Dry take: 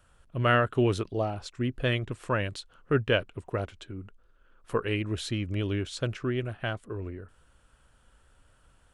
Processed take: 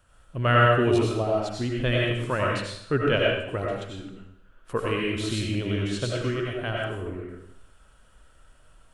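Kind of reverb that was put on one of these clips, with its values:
comb and all-pass reverb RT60 0.7 s, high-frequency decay 1×, pre-delay 55 ms, DRR −3 dB

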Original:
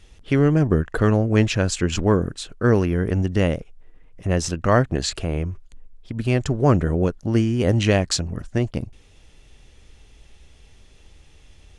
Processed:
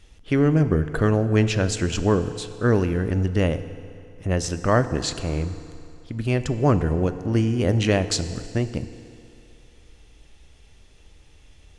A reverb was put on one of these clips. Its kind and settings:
feedback delay network reverb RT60 2.7 s, low-frequency decay 0.8×, high-frequency decay 0.85×, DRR 11 dB
level −2 dB

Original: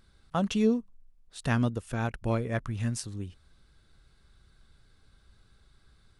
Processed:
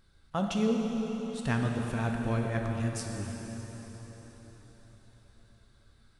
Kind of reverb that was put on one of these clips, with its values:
dense smooth reverb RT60 4.9 s, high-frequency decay 0.9×, DRR 1 dB
level −3 dB

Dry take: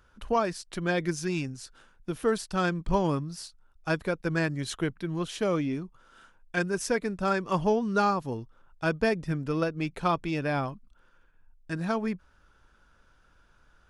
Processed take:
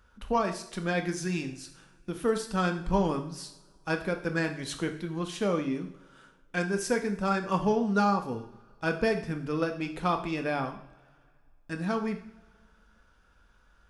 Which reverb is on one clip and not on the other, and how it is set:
coupled-rooms reverb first 0.56 s, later 2.2 s, from −22 dB, DRR 4.5 dB
level −2 dB

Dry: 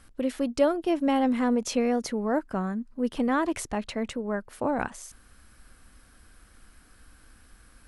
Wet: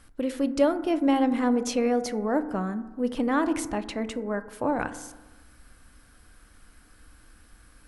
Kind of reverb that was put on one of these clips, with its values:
feedback delay network reverb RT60 1.2 s, low-frequency decay 1.1×, high-frequency decay 0.25×, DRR 10.5 dB

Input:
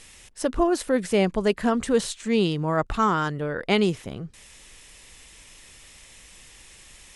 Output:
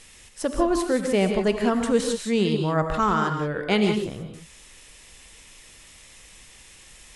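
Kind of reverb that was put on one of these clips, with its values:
reverb whose tail is shaped and stops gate 200 ms rising, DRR 4.5 dB
level −1 dB

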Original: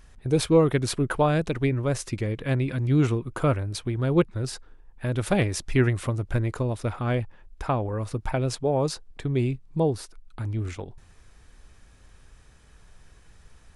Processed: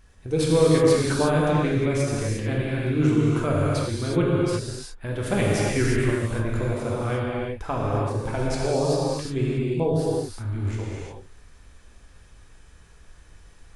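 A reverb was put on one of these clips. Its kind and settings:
reverb whose tail is shaped and stops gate 390 ms flat, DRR −5.5 dB
level −4 dB

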